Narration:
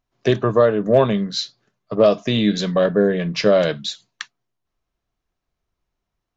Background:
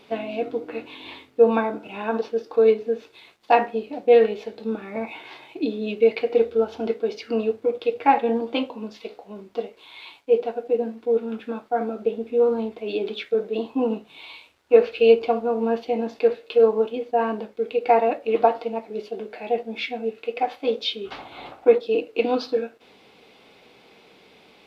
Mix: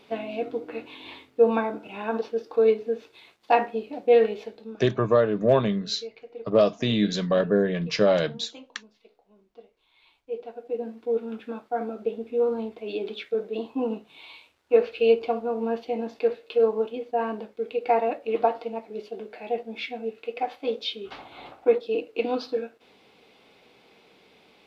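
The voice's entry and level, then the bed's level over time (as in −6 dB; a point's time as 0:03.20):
4.55 s, −5.0 dB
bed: 0:04.44 −3 dB
0:04.94 −21 dB
0:09.88 −21 dB
0:10.97 −4.5 dB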